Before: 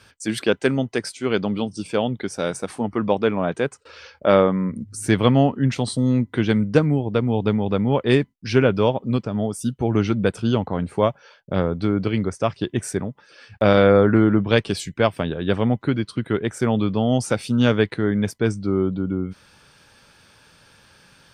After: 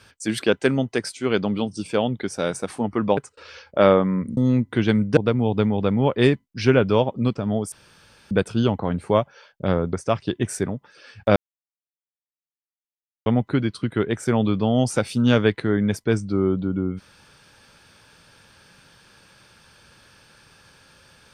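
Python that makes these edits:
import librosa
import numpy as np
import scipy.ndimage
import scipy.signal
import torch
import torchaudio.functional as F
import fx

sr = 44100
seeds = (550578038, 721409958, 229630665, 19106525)

y = fx.edit(x, sr, fx.cut(start_s=3.17, length_s=0.48),
    fx.cut(start_s=4.85, length_s=1.13),
    fx.cut(start_s=6.78, length_s=0.27),
    fx.room_tone_fill(start_s=9.6, length_s=0.59),
    fx.cut(start_s=11.81, length_s=0.46),
    fx.silence(start_s=13.7, length_s=1.9), tone=tone)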